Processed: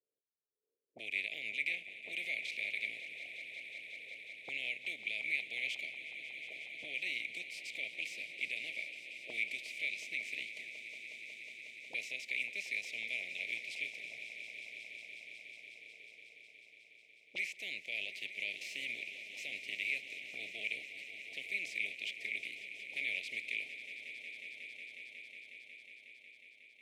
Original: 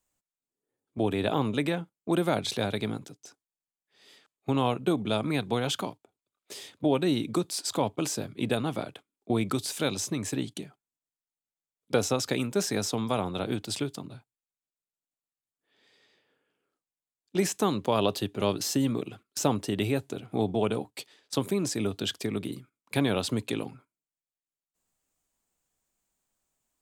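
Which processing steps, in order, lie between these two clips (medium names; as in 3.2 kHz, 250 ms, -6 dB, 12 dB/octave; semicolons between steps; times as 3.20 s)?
spectral contrast reduction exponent 0.6; elliptic band-stop 640–2100 Hz, stop band 40 dB; peak limiter -20 dBFS, peak gain reduction 7.5 dB; auto-wah 440–2300 Hz, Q 7.1, up, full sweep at -32.5 dBFS; echo with a slow build-up 182 ms, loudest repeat 5, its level -15 dB; trim +5.5 dB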